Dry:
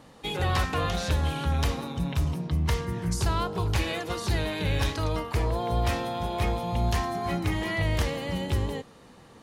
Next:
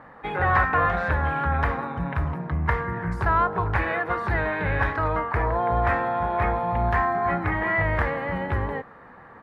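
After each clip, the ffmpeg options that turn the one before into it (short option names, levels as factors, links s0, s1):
-af "firequalizer=gain_entry='entry(320,0);entry(750,8);entry(1700,13);entry(2900,-10);entry(6100,-25);entry(13000,-20)':delay=0.05:min_phase=1"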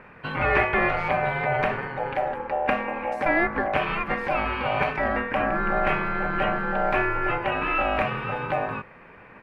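-af "aeval=exprs='val(0)*sin(2*PI*680*n/s)':c=same,volume=1.26"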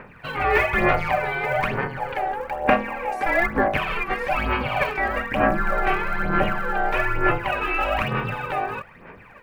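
-af "aphaser=in_gain=1:out_gain=1:delay=2.6:decay=0.63:speed=1.1:type=sinusoidal,crystalizer=i=1.5:c=0,volume=0.841"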